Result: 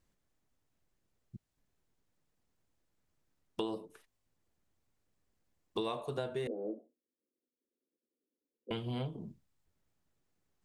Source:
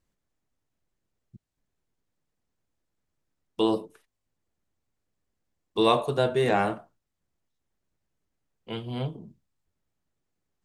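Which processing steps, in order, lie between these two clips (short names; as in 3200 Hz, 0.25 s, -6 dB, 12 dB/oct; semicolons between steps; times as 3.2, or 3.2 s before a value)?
6.47–8.71 Chebyshev band-pass 240–520 Hz, order 3; compressor 8:1, threshold -35 dBFS, peak gain reduction 18.5 dB; gain +1 dB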